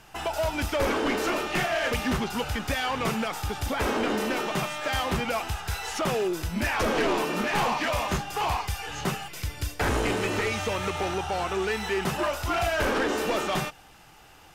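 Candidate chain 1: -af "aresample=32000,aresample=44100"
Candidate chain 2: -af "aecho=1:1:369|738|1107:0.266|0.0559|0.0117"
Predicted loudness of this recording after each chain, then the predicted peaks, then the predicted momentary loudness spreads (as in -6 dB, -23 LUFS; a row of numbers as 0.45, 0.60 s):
-27.5, -27.5 LUFS; -18.0, -16.5 dBFS; 6, 6 LU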